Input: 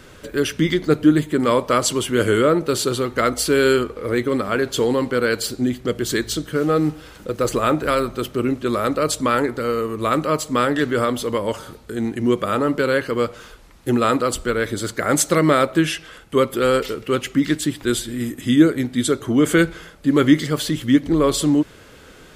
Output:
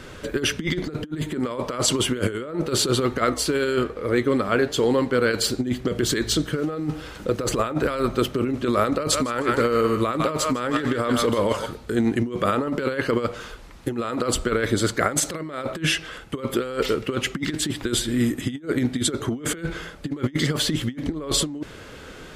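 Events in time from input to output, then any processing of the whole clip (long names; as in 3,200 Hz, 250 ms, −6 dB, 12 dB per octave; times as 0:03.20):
0:03.22–0:05.31: flanger 1.2 Hz, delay 4.7 ms, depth 4.7 ms, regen +90%
0:08.94–0:11.66: feedback echo with a high-pass in the loop 155 ms, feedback 31%, high-pass 1,000 Hz, level −6 dB
whole clip: high-shelf EQ 10,000 Hz −9.5 dB; compressor whose output falls as the input rises −22 dBFS, ratio −0.5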